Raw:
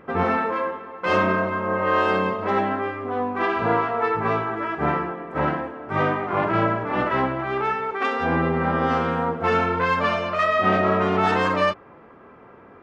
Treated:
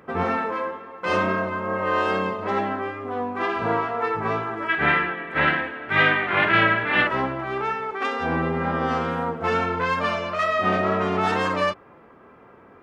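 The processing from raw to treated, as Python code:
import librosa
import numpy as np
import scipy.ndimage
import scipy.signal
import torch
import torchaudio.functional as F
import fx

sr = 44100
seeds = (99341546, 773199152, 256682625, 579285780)

y = fx.high_shelf(x, sr, hz=6100.0, db=8.5)
y = fx.wow_flutter(y, sr, seeds[0], rate_hz=2.1, depth_cents=19.0)
y = fx.band_shelf(y, sr, hz=2500.0, db=14.5, octaves=1.7, at=(4.68, 7.06), fade=0.02)
y = y * librosa.db_to_amplitude(-2.5)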